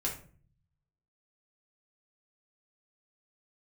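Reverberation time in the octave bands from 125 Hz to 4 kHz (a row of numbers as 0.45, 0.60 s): 1.2, 0.80, 0.50, 0.40, 0.35, 0.30 s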